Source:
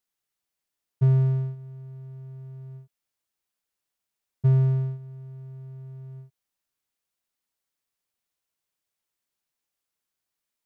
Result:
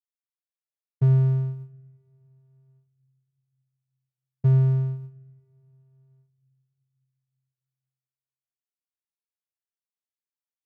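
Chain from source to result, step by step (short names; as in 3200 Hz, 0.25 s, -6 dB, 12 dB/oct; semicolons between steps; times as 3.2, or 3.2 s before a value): gate with hold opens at -29 dBFS; on a send: reverb RT60 1.9 s, pre-delay 7 ms, DRR 20 dB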